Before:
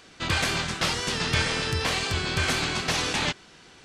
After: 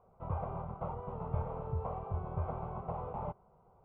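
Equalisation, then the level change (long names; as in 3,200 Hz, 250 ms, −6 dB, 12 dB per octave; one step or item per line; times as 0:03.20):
inverse Chebyshev low-pass filter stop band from 5,100 Hz, stop band 70 dB
high-frequency loss of the air 140 metres
phaser with its sweep stopped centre 710 Hz, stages 4
−5.0 dB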